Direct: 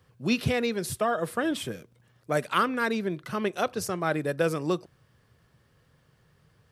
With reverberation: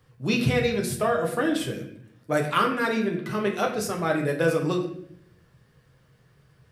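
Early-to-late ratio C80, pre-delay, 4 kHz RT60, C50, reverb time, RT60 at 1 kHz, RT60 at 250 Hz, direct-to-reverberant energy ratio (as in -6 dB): 10.0 dB, 7 ms, 0.55 s, 7.5 dB, 0.70 s, 0.60 s, 0.95 s, 0.5 dB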